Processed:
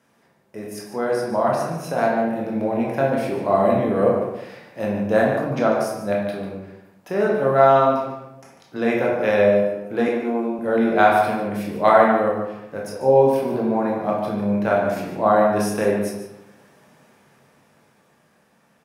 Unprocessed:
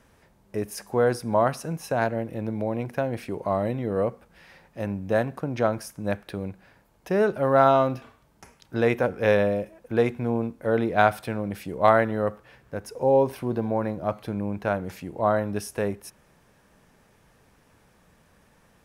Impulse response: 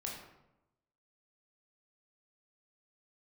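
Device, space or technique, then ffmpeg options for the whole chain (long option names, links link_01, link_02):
far laptop microphone: -filter_complex "[1:a]atrim=start_sample=2205[link_01];[0:a][link_01]afir=irnorm=-1:irlink=0,highpass=170,dynaudnorm=framelen=330:gausssize=13:maxgain=9.5dB,asettb=1/sr,asplit=3[link_02][link_03][link_04];[link_02]atrim=end=10.084[link_05];[link_03]atrim=start=10.08:end=10.59,asetpts=PTS-STARTPTS,afade=type=in:duration=0.004:curve=qsin,afade=type=out:start_time=0.506:duration=0.004:curve=qsin,highpass=frequency=240:width=0.5412,highpass=frequency=240:width=1.3066[link_06];[link_04]atrim=start=10.586[link_07];[link_05][link_06]acrossfade=duration=0.004:curve1=hsin:curve2=qsin[link_08];[link_08][link_07]acrossfade=duration=0.004:curve1=qsin:curve2=hsin,asplit=2[link_09][link_10];[link_10]adelay=145.8,volume=-9dB,highshelf=frequency=4000:gain=-3.28[link_11];[link_09][link_11]amix=inputs=2:normalize=0"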